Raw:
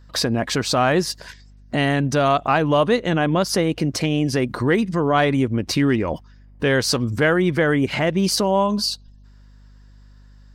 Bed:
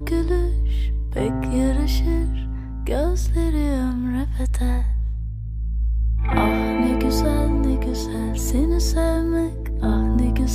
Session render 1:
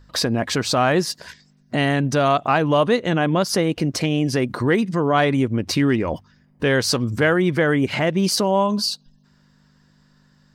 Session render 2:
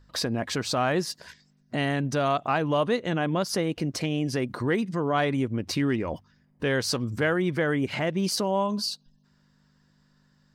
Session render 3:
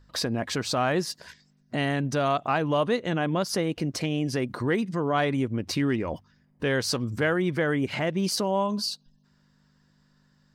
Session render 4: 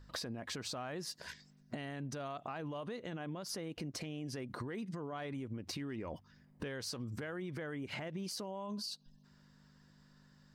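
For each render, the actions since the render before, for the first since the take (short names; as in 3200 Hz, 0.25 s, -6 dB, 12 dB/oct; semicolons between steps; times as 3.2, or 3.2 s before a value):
de-hum 50 Hz, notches 2
gain -7 dB
nothing audible
limiter -22.5 dBFS, peak gain reduction 9 dB; compressor 5:1, threshold -40 dBFS, peak gain reduction 12 dB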